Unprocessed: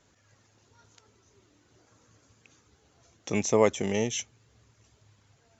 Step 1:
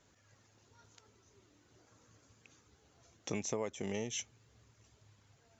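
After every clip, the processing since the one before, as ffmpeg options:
-af "acompressor=threshold=0.0316:ratio=8,volume=0.668"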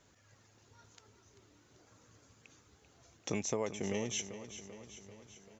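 -af "aecho=1:1:390|780|1170|1560|1950|2340|2730:0.251|0.151|0.0904|0.0543|0.0326|0.0195|0.0117,volume=1.26"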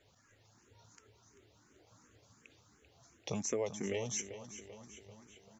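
-filter_complex "[0:a]asplit=2[s0][s1];[s1]afreqshift=2.8[s2];[s0][s2]amix=inputs=2:normalize=1,volume=1.19"

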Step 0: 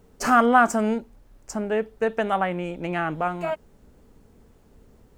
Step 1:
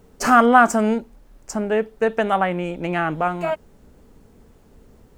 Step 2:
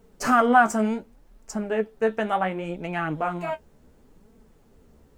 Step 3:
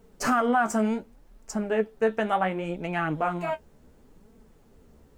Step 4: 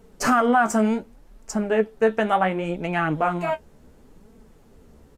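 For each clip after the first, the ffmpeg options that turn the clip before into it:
-af "bandreject=f=50:t=h:w=6,bandreject=f=100:t=h:w=6,volume=1.58"
-af "flanger=delay=4.4:depth=9.8:regen=34:speed=0.69:shape=sinusoidal,volume=0.841"
-af "alimiter=limit=0.2:level=0:latency=1:release=169"
-af "aresample=32000,aresample=44100,volume=1.68"

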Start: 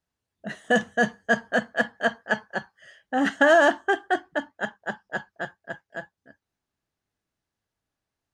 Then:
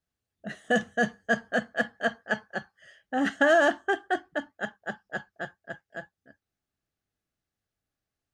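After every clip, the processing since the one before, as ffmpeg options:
-af "lowshelf=f=120:g=3.5,bandreject=f=960:w=6.1,volume=0.668"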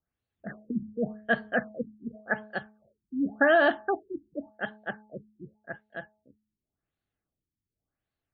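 -af "bandreject=f=213.5:t=h:w=4,bandreject=f=427:t=h:w=4,bandreject=f=640.5:t=h:w=4,bandreject=f=854:t=h:w=4,afftfilt=real='re*lt(b*sr/1024,340*pow(4700/340,0.5+0.5*sin(2*PI*0.89*pts/sr)))':imag='im*lt(b*sr/1024,340*pow(4700/340,0.5+0.5*sin(2*PI*0.89*pts/sr)))':win_size=1024:overlap=0.75"

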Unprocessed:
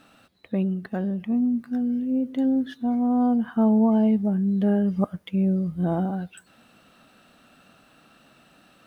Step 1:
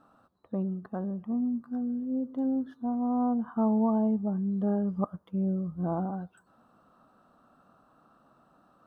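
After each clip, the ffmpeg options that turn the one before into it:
-af "highshelf=f=1600:t=q:w=3:g=-11.5,volume=0.447"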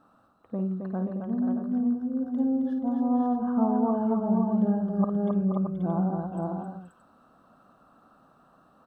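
-af "aecho=1:1:53|267|478|532|625:0.376|0.562|0.376|0.596|0.376"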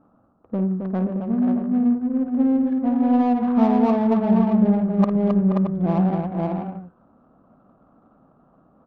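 -af "adynamicsmooth=sensitivity=3.5:basefreq=740,volume=2.24"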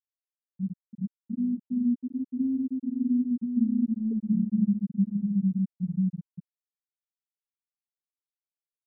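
-af "aeval=exprs='0.501*(cos(1*acos(clip(val(0)/0.501,-1,1)))-cos(1*PI/2))+0.0282*(cos(6*acos(clip(val(0)/0.501,-1,1)))-cos(6*PI/2))':c=same,afftfilt=real='re*gte(hypot(re,im),1)':imag='im*gte(hypot(re,im),1)':win_size=1024:overlap=0.75,volume=0.501"

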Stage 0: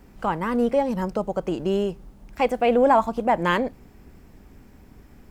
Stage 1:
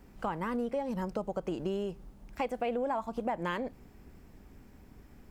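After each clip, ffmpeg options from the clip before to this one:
-af "acompressor=threshold=0.0631:ratio=6,volume=0.531"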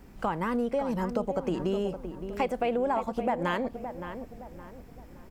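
-filter_complex "[0:a]asplit=2[s0][s1];[s1]adelay=567,lowpass=f=1700:p=1,volume=0.355,asplit=2[s2][s3];[s3]adelay=567,lowpass=f=1700:p=1,volume=0.4,asplit=2[s4][s5];[s5]adelay=567,lowpass=f=1700:p=1,volume=0.4,asplit=2[s6][s7];[s7]adelay=567,lowpass=f=1700:p=1,volume=0.4[s8];[s0][s2][s4][s6][s8]amix=inputs=5:normalize=0,volume=1.68"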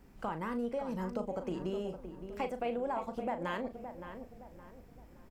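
-filter_complex "[0:a]asplit=2[s0][s1];[s1]adelay=38,volume=0.335[s2];[s0][s2]amix=inputs=2:normalize=0,volume=0.398"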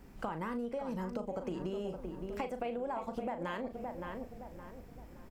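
-af "acompressor=threshold=0.0126:ratio=6,volume=1.58"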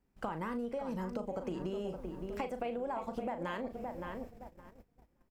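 -af "agate=range=0.0794:threshold=0.00501:ratio=16:detection=peak"

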